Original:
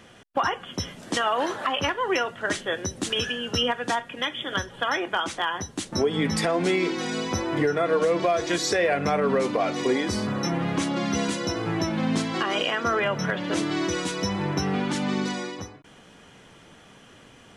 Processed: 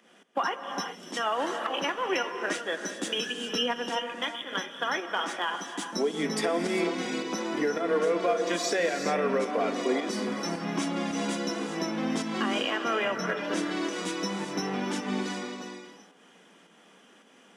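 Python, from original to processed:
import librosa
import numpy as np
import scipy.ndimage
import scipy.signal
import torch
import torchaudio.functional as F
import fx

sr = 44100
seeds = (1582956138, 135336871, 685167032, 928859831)

p1 = scipy.signal.sosfilt(scipy.signal.butter(8, 180.0, 'highpass', fs=sr, output='sos'), x)
p2 = fx.notch(p1, sr, hz=4200.0, q=14.0)
p3 = np.sign(p2) * np.maximum(np.abs(p2) - 10.0 ** (-38.0 / 20.0), 0.0)
p4 = p2 + F.gain(torch.from_numpy(p3), -11.5).numpy()
p5 = fx.volume_shaper(p4, sr, bpm=108, per_beat=1, depth_db=-9, release_ms=178.0, shape='fast start')
p6 = fx.rev_gated(p5, sr, seeds[0], gate_ms=430, shape='rising', drr_db=6.0)
y = F.gain(torch.from_numpy(p6), -6.0).numpy()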